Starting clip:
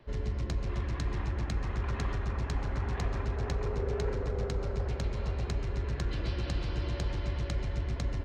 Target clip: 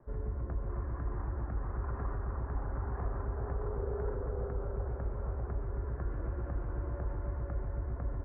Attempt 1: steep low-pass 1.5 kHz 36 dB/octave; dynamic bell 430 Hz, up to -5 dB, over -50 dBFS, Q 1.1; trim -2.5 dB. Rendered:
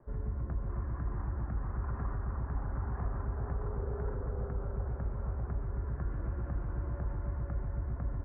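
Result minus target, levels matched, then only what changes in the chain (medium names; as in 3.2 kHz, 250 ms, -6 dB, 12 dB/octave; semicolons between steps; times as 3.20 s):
500 Hz band -4.0 dB
change: dynamic bell 170 Hz, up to -5 dB, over -50 dBFS, Q 1.1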